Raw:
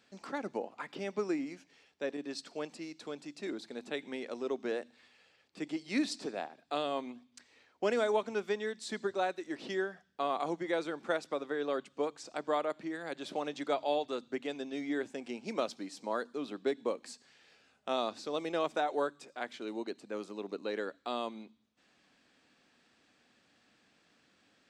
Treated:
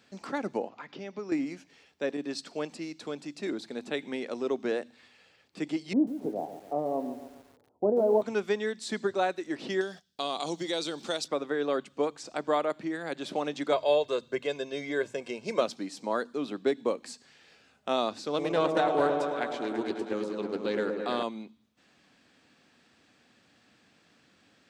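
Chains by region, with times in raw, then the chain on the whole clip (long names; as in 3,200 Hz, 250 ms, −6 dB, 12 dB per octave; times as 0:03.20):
0:00.69–0:01.32: Butterworth low-pass 6,700 Hz 48 dB per octave + downward compressor 1.5 to 1, threshold −55 dBFS
0:05.93–0:08.22: Butterworth low-pass 850 Hz + double-tracking delay 19 ms −11 dB + feedback echo at a low word length 140 ms, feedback 55%, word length 9 bits, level −11 dB
0:09.81–0:11.28: noise gate −59 dBFS, range −11 dB + high shelf with overshoot 2,700 Hz +12 dB, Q 1.5 + downward compressor 1.5 to 1, threshold −39 dBFS
0:13.72–0:15.61: mains-hum notches 60/120/180 Hz + comb filter 1.9 ms, depth 66%
0:18.28–0:21.23: echo whose low-pass opens from repeat to repeat 109 ms, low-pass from 750 Hz, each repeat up 1 octave, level −3 dB + highs frequency-modulated by the lows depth 0.11 ms
whole clip: high-pass filter 74 Hz; low-shelf EQ 120 Hz +9.5 dB; level +4.5 dB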